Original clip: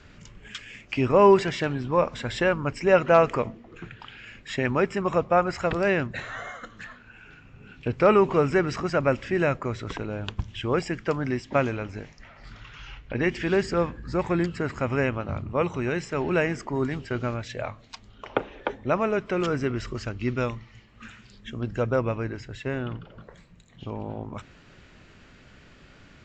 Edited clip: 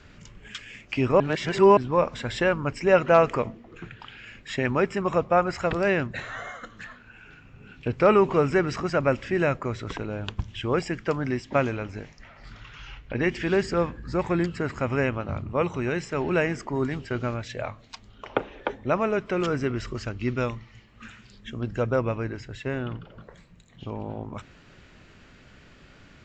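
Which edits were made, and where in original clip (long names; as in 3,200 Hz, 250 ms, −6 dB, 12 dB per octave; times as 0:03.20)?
0:01.20–0:01.77: reverse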